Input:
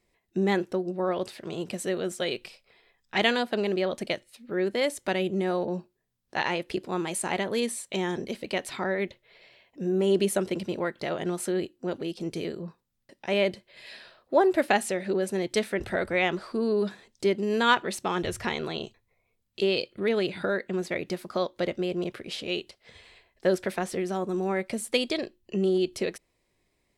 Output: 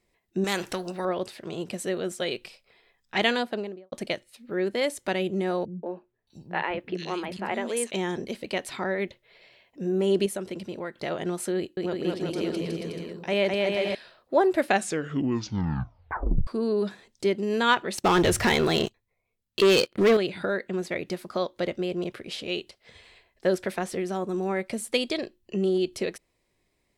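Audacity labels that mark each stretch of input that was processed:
0.440000	1.050000	every bin compressed towards the loudest bin 2 to 1
3.370000	3.920000	fade out and dull
5.650000	7.910000	three-band delay without the direct sound lows, mids, highs 180/620 ms, splits 250/3,000 Hz
10.260000	11.030000	downward compressor 1.5 to 1, threshold −39 dBFS
11.560000	13.950000	bouncing-ball delay first gap 210 ms, each gap 0.75×, echoes 5, each echo −2 dB
14.680000	14.680000	tape stop 1.79 s
17.980000	20.170000	leveller curve on the samples passes 3

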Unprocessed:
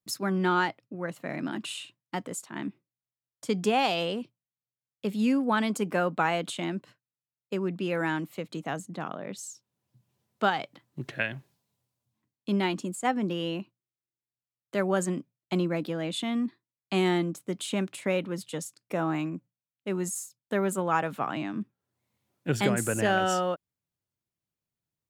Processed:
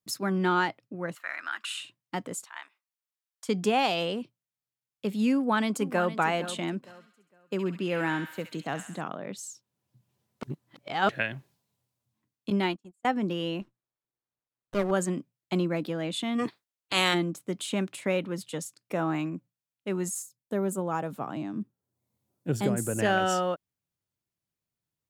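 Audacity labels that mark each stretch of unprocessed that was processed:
1.150000	1.810000	high-pass with resonance 1,400 Hz, resonance Q 3
2.440000	3.490000	high-pass filter 870 Hz 24 dB per octave
5.340000	6.140000	delay throw 460 ms, feedback 25%, level −12.5 dB
6.760000	9.010000	delay with a high-pass on its return 67 ms, feedback 56%, high-pass 1,500 Hz, level −5.5 dB
10.430000	11.090000	reverse
12.500000	13.050000	noise gate −30 dBFS, range −37 dB
13.610000	14.910000	windowed peak hold over 17 samples
16.380000	17.130000	ceiling on every frequency bin ceiling under each frame's peak by 24 dB
20.220000	22.990000	parametric band 2,200 Hz −11 dB 2.3 octaves

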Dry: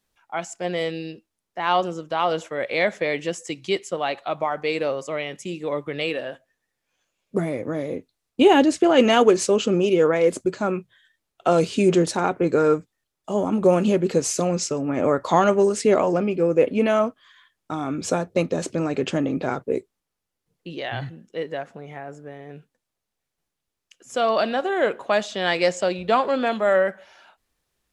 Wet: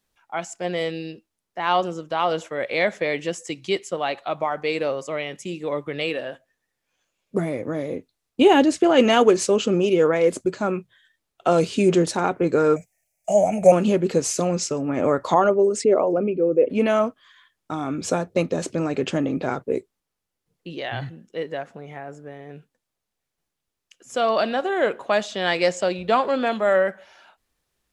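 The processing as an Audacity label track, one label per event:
12.760000	13.720000	drawn EQ curve 190 Hz 0 dB, 320 Hz −17 dB, 690 Hz +15 dB, 1,100 Hz −20 dB, 2,300 Hz +13 dB, 3,600 Hz −12 dB, 6,100 Hz +12 dB
15.340000	16.700000	spectral envelope exaggerated exponent 1.5

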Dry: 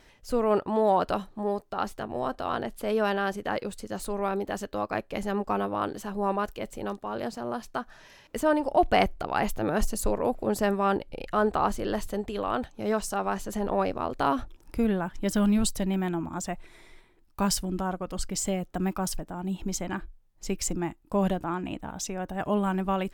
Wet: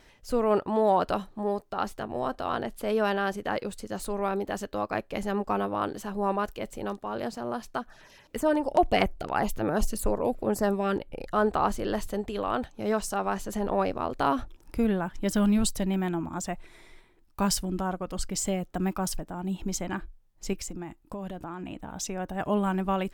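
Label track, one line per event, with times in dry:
7.780000	11.340000	auto-filter notch saw down 7 Hz → 1.3 Hz 640–7,600 Hz
20.530000	21.910000	downward compressor, threshold −33 dBFS

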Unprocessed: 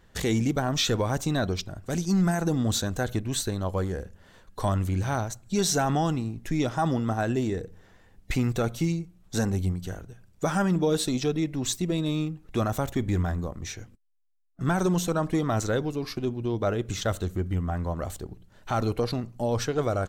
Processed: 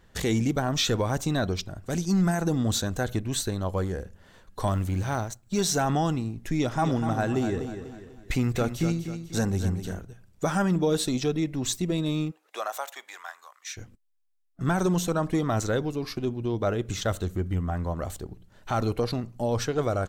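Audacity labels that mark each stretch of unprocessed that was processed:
4.670000	5.810000	mu-law and A-law mismatch coded by A
6.470000	10.000000	repeating echo 246 ms, feedback 40%, level −9 dB
12.300000	13.760000	high-pass filter 460 Hz → 1,300 Hz 24 dB per octave

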